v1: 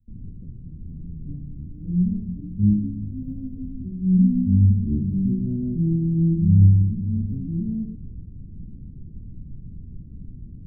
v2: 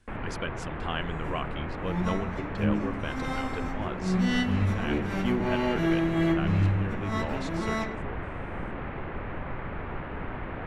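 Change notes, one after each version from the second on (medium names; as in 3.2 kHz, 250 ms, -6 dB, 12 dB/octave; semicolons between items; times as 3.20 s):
second sound -11.0 dB; master: remove inverse Chebyshev band-stop 1.1–7 kHz, stop band 80 dB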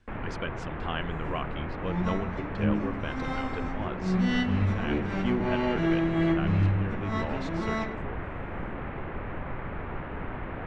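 master: add distance through air 93 m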